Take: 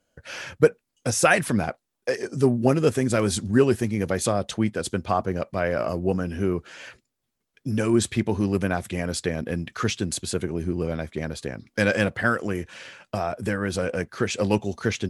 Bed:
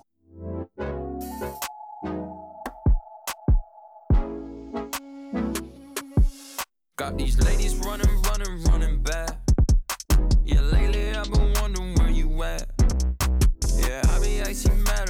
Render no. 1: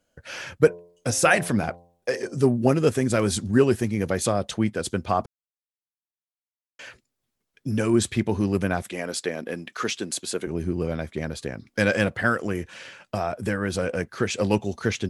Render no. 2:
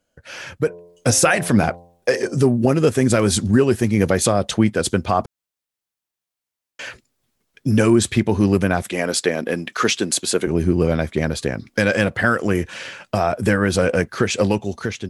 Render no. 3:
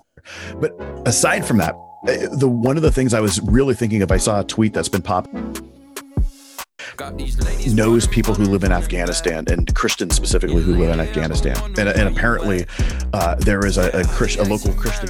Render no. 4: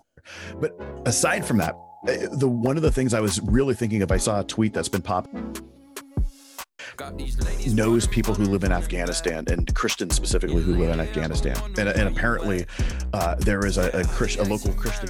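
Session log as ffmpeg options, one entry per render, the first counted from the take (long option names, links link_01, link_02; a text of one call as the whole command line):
ffmpeg -i in.wav -filter_complex "[0:a]asettb=1/sr,asplit=3[link_01][link_02][link_03];[link_01]atrim=end=0.584[link_04];[link_02]atrim=start=0.58:end=2.42,asetpts=PTS-STARTPTS,afade=type=in:duration=0.004:curve=qsin,afade=type=out:start_time=1.836:duration=0.004:curve=qsin,bandreject=frequency=86.96:width_type=h:width=4,bandreject=frequency=173.92:width_type=h:width=4,bandreject=frequency=260.88:width_type=h:width=4,bandreject=frequency=347.84:width_type=h:width=4,bandreject=frequency=434.8:width_type=h:width=4,bandreject=frequency=521.76:width_type=h:width=4,bandreject=frequency=608.72:width_type=h:width=4,bandreject=frequency=695.68:width_type=h:width=4,bandreject=frequency=782.64:width_type=h:width=4,bandreject=frequency=869.6:width_type=h:width=4,bandreject=frequency=956.56:width_type=h:width=4,bandreject=frequency=1043.52:width_type=h:width=4[link_05];[link_03]atrim=start=2.416[link_06];[link_04][link_05]acrossfade=duration=0.004:curve1=hsin:curve2=qsin[link_07];[link_07][link_06]acrossfade=duration=0.004:curve1=qsin:curve2=hsin,asettb=1/sr,asplit=3[link_08][link_09][link_10];[link_08]atrim=end=8.824[link_11];[link_09]atrim=start=8.82:end=10.47,asetpts=PTS-STARTPTS,afade=type=in:duration=0.004:curve=qsin,afade=type=out:start_time=1.646:duration=0.004:curve=qsin,highpass=280[link_12];[link_10]atrim=start=10.466[link_13];[link_11][link_12]acrossfade=duration=0.004:curve1=hsin:curve2=qsin[link_14];[link_14][link_13]acrossfade=duration=0.004:curve1=qsin:curve2=hsin,asplit=3[link_15][link_16][link_17];[link_15]atrim=end=5.26,asetpts=PTS-STARTPTS,afade=type=out:start_time=5.256:duration=0.004:curve=hsin[link_18];[link_16]atrim=start=5.26:end=6.79,asetpts=PTS-STARTPTS,volume=0[link_19];[link_17]atrim=start=6.79,asetpts=PTS-STARTPTS,afade=type=in:duration=0.004:curve=hsin[link_20];[link_18][link_19][link_20]concat=n=3:v=0:a=1" out.wav
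ffmpeg -i in.wav -af "alimiter=limit=-13.5dB:level=0:latency=1:release=295,dynaudnorm=framelen=190:gausssize=7:maxgain=9.5dB" out.wav
ffmpeg -i in.wav -i bed.wav -filter_complex "[1:a]volume=0dB[link_01];[0:a][link_01]amix=inputs=2:normalize=0" out.wav
ffmpeg -i in.wav -af "volume=-5.5dB" out.wav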